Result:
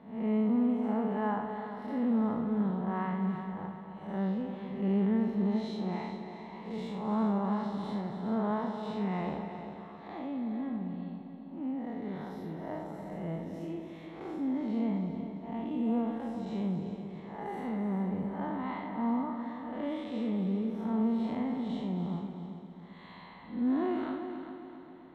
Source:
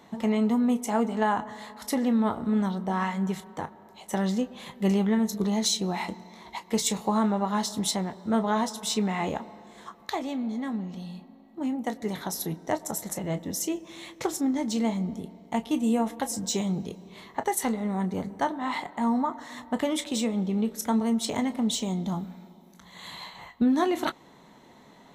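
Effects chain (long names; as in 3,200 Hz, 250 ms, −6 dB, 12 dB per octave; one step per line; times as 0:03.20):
spectrum smeared in time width 175 ms
high-frequency loss of the air 460 metres
echo machine with several playback heads 133 ms, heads second and third, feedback 49%, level −10.5 dB
level −2.5 dB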